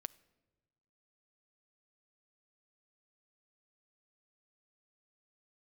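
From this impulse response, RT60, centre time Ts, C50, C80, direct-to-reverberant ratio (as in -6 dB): 1.3 s, 2 ms, 21.5 dB, 23.5 dB, 18.5 dB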